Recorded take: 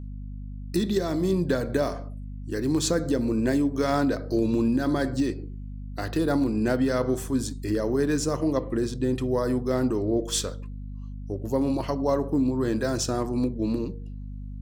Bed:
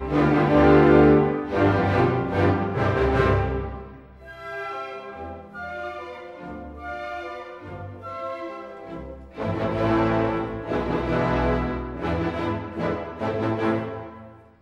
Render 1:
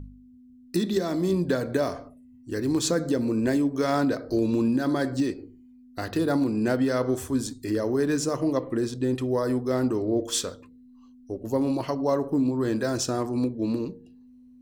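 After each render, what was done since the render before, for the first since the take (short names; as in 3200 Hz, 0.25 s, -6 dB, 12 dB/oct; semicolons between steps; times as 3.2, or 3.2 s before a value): de-hum 50 Hz, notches 4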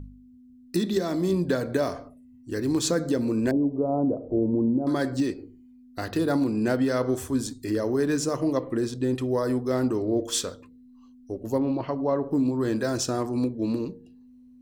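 3.51–4.87 inverse Chebyshev low-pass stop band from 1600 Hz; 11.58–12.31 air absorption 280 m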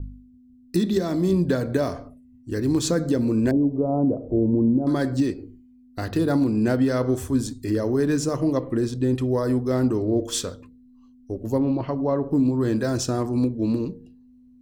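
expander -48 dBFS; low shelf 210 Hz +9 dB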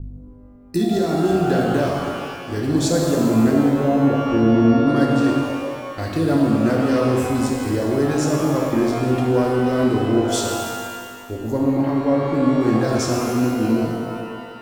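shimmer reverb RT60 2 s, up +12 st, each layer -8 dB, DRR -1 dB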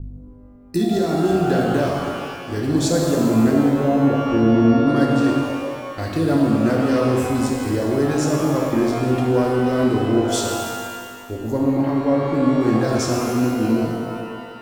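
nothing audible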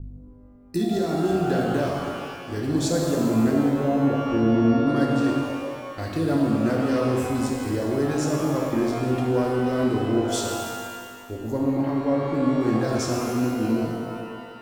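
gain -4.5 dB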